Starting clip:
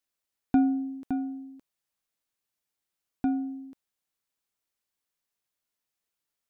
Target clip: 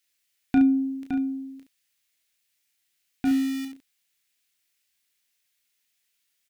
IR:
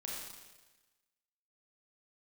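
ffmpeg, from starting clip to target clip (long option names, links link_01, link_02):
-filter_complex "[0:a]asettb=1/sr,asplit=3[link_01][link_02][link_03];[link_01]atrim=end=3.254[link_04];[link_02]atrim=start=3.25:end=3.65,asetpts=PTS-STARTPTS,afade=type=in:duration=0.004:curve=qsin,afade=type=out:start_time=0.396:duration=0.004:curve=qsin,aeval=exprs='val(0)+0.5*0.0141*sgn(val(0))':channel_layout=same[link_05];[link_03]atrim=start=3.646[link_06];[link_04][link_05]acrossfade=duration=0.004:curve1=hsin:curve2=qsin[link_07];[link_07][link_06]acrossfade=duration=0.004:curve1=qsin:curve2=hsin,highshelf=frequency=1500:width_type=q:width=1.5:gain=10,aecho=1:1:22|33|70:0.299|0.447|0.376"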